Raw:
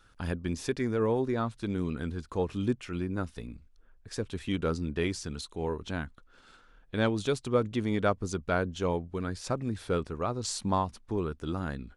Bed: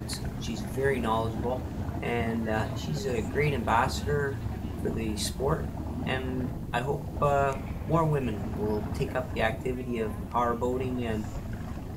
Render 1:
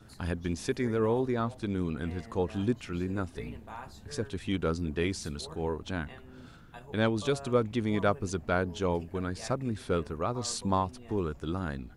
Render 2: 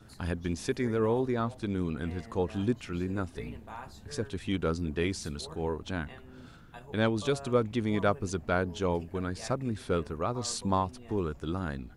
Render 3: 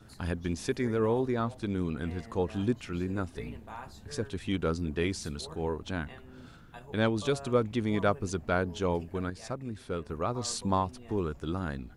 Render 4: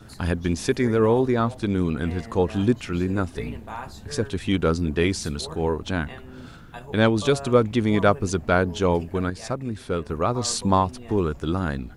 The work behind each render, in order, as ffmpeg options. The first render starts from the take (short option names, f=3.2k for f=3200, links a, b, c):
-filter_complex "[1:a]volume=-19dB[a];[0:a][a]amix=inputs=2:normalize=0"
-af anull
-filter_complex "[0:a]asplit=3[a][b][c];[a]atrim=end=9.302[d];[b]atrim=start=9.298:end=10.092,asetpts=PTS-STARTPTS,volume=-5.5dB[e];[c]atrim=start=10.088[f];[d][e]acrossfade=d=0.004:c1=hsin:c2=hsin[g];[g][f]acrossfade=d=0.004:c1=hsin:c2=hsin"
-af "volume=8.5dB"